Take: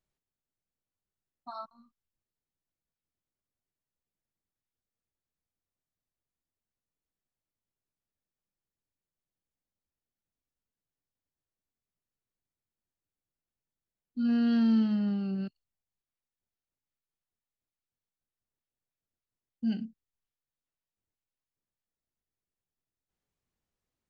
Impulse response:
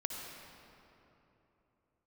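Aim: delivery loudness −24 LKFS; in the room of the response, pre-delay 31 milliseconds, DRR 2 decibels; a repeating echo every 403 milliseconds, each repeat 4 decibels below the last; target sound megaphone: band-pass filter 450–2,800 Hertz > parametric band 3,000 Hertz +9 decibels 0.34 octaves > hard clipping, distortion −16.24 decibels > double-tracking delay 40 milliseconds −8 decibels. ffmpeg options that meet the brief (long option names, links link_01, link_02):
-filter_complex "[0:a]aecho=1:1:403|806|1209|1612|2015|2418|2821|3224|3627:0.631|0.398|0.25|0.158|0.0994|0.0626|0.0394|0.0249|0.0157,asplit=2[link_01][link_02];[1:a]atrim=start_sample=2205,adelay=31[link_03];[link_02][link_03]afir=irnorm=-1:irlink=0,volume=-3.5dB[link_04];[link_01][link_04]amix=inputs=2:normalize=0,highpass=450,lowpass=2800,equalizer=frequency=3000:width_type=o:width=0.34:gain=9,asoftclip=type=hard:threshold=-30dB,asplit=2[link_05][link_06];[link_06]adelay=40,volume=-8dB[link_07];[link_05][link_07]amix=inputs=2:normalize=0,volume=15.5dB"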